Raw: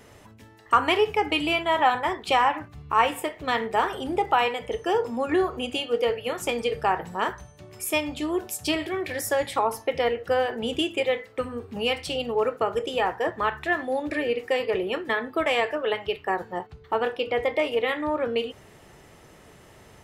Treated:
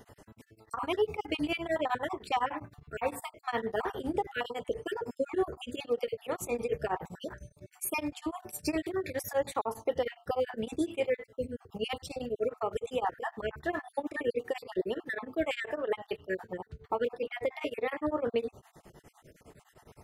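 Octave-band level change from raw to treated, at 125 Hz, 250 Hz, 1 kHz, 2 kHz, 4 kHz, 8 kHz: -5.0, -6.0, -11.0, -10.5, -13.0, -7.0 dB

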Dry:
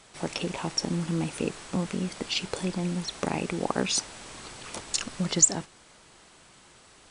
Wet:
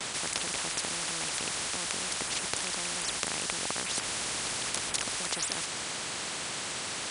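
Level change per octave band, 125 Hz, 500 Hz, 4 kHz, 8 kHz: -14.0, -7.0, +2.0, -1.5 dB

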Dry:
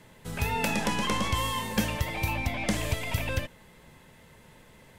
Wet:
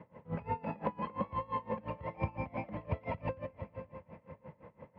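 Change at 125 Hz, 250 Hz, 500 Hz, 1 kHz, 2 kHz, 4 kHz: -8.5, -9.0, -4.0, -6.0, -17.5, -29.0 dB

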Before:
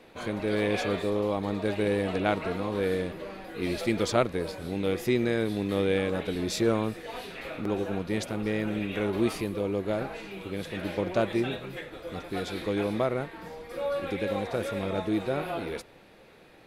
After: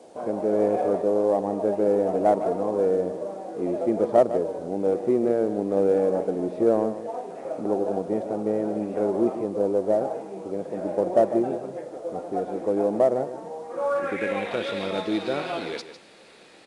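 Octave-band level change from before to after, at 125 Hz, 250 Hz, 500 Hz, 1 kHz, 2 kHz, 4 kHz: -5.0 dB, +2.5 dB, +7.0 dB, +6.0 dB, -4.0 dB, n/a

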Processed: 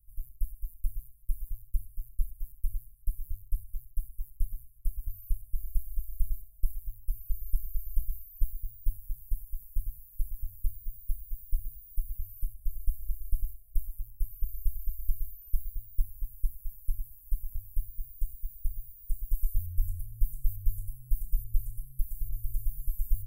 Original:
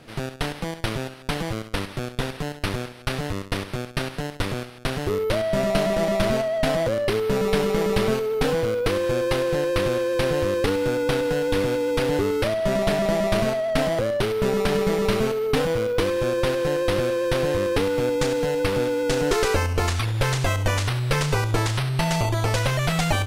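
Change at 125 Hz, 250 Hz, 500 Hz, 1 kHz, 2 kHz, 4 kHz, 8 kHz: -14.5 dB, under -40 dB, under -40 dB, under -40 dB, under -40 dB, under -40 dB, -18.5 dB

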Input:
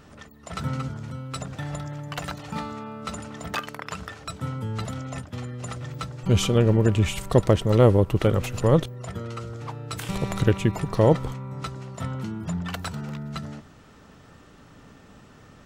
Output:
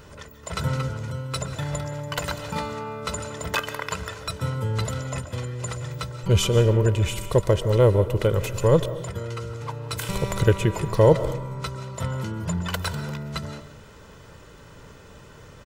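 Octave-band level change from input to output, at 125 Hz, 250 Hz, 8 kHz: +1.0, -3.0, +4.0 dB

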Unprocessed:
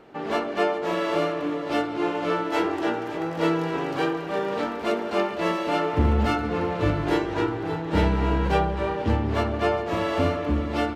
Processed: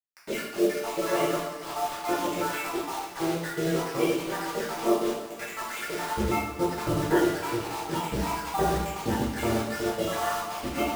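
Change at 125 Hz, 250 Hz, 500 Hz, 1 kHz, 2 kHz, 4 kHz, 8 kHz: -8.0, -3.5, -3.5, -3.0, -3.0, -1.0, +11.0 dB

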